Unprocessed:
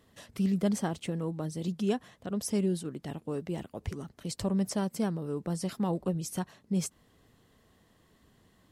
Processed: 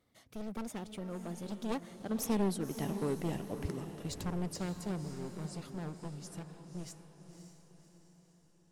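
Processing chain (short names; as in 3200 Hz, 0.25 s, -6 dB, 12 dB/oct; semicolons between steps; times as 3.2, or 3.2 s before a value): one-sided fold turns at -29.5 dBFS; Doppler pass-by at 2.93, 35 m/s, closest 26 m; diffused feedback echo 0.554 s, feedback 48%, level -9 dB; gain +1 dB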